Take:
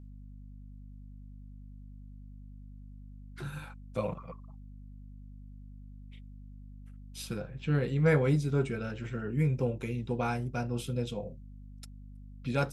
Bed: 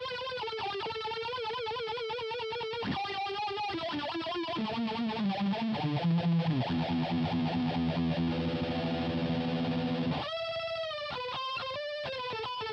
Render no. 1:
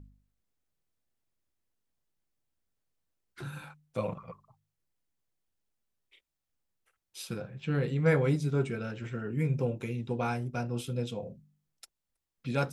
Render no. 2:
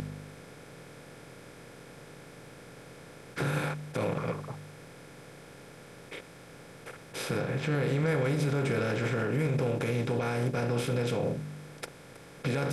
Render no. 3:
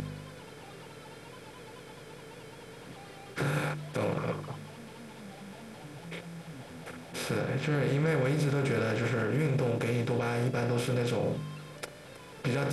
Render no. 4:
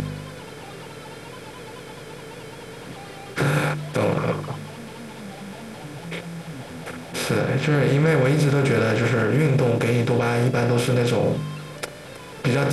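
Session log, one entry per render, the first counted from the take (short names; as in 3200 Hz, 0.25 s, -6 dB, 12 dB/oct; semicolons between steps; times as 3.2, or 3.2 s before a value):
de-hum 50 Hz, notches 5
per-bin compression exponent 0.4; limiter -20 dBFS, peak gain reduction 8.5 dB
add bed -17.5 dB
gain +9.5 dB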